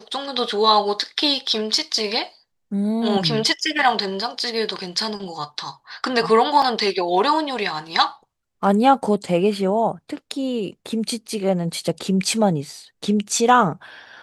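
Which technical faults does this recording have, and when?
0:06.62: drop-out 3.9 ms

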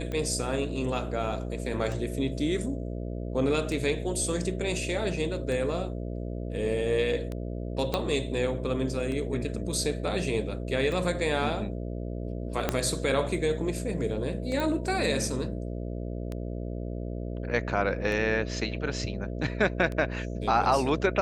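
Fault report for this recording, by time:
mains buzz 60 Hz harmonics 11 −34 dBFS
scratch tick 33 1/3 rpm −22 dBFS
0:07.94: click −13 dBFS
0:12.69: click −10 dBFS
0:14.60: click

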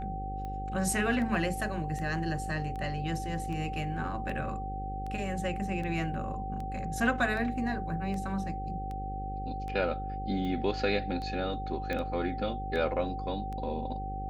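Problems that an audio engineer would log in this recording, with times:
mains buzz 50 Hz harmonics 11 −38 dBFS
scratch tick 78 rpm −28 dBFS
whistle 770 Hz −37 dBFS
0:11.93: click −21 dBFS

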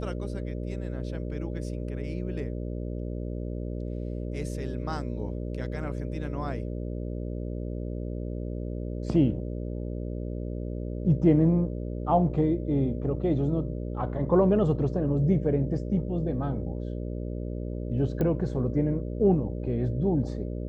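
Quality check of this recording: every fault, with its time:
mains buzz 60 Hz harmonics 10 −33 dBFS
0:18.21: click −18 dBFS

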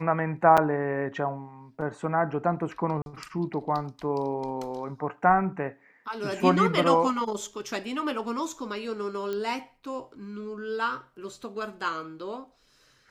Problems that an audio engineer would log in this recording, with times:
0:00.57–0:00.58: drop-out 6.1 ms
0:03.02–0:03.06: drop-out 41 ms
0:09.33: click −20 dBFS

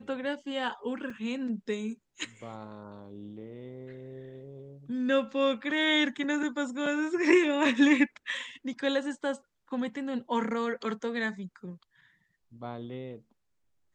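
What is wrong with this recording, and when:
0:01.10: drop-out 3.6 ms

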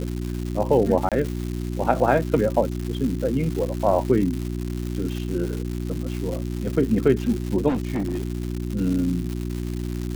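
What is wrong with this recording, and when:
surface crackle 300 per second −28 dBFS
mains hum 60 Hz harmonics 6 −28 dBFS
0:01.09–0:01.12: drop-out 27 ms
0:07.68–0:08.37: clipping −20.5 dBFS

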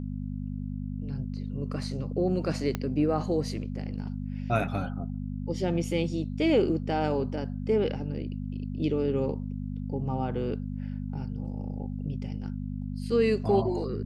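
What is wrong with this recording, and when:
mains hum 50 Hz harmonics 5 −34 dBFS
0:02.75: click −15 dBFS

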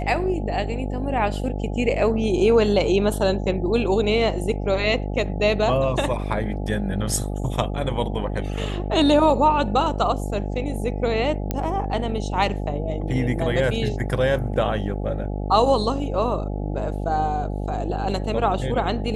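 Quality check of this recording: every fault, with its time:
mains buzz 50 Hz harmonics 17 −27 dBFS
0:11.51: click −10 dBFS

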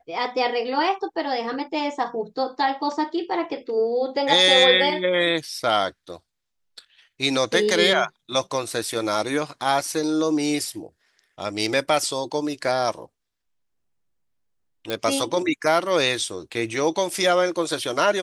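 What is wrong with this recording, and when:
0:14.90: click −13 dBFS

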